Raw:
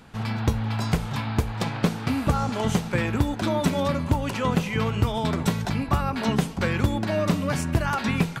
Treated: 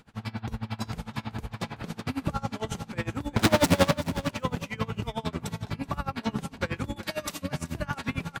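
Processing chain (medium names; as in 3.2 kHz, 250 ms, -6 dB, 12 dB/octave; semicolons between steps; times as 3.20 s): 3.36–3.91 s: fuzz box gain 38 dB, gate -47 dBFS; 6.96–7.42 s: tilt EQ +4 dB/octave; feedback delay 377 ms, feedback 26%, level -11.5 dB; logarithmic tremolo 11 Hz, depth 24 dB; trim -1.5 dB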